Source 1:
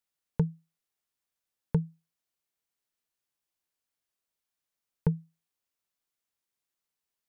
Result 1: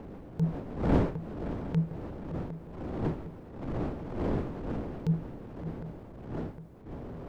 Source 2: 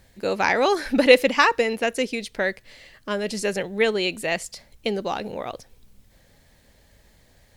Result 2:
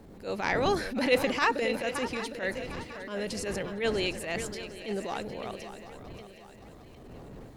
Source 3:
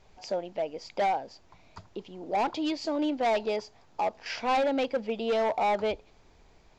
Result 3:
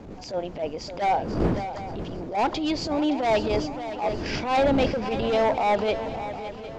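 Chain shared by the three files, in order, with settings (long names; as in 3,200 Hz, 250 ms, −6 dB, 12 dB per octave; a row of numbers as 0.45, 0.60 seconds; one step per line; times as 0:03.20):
wind on the microphone 330 Hz −38 dBFS
feedback echo with a long and a short gap by turns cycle 758 ms, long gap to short 3 to 1, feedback 44%, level −13 dB
transient designer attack −12 dB, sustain +2 dB
normalise the peak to −12 dBFS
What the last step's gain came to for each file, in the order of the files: +4.5, −6.0, +5.5 decibels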